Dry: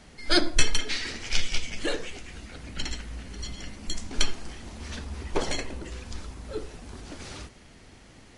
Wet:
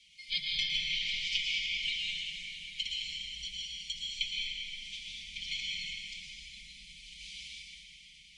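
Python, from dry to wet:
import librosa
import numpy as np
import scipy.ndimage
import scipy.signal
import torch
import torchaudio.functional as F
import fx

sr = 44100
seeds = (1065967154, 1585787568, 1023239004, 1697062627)

y = fx.octave_divider(x, sr, octaves=1, level_db=-3.0)
y = scipy.signal.sosfilt(scipy.signal.ellip(3, 1.0, 50, [110.0, 2400.0], 'bandstop', fs=sr, output='sos'), y)
y = fx.env_lowpass_down(y, sr, base_hz=2700.0, full_db=-20.0)
y = fx.vowel_filter(y, sr, vowel='i')
y = fx.high_shelf(y, sr, hz=3000.0, db=11.0)
y = fx.fixed_phaser(y, sr, hz=400.0, stages=6)
y = y + 0.91 * np.pad(y, (int(5.6 * sr / 1000.0), 0))[:len(y)]
y = fx.rev_plate(y, sr, seeds[0], rt60_s=4.5, hf_ratio=0.5, predelay_ms=100, drr_db=-5.0)
y = y * 10.0 ** (7.0 / 20.0)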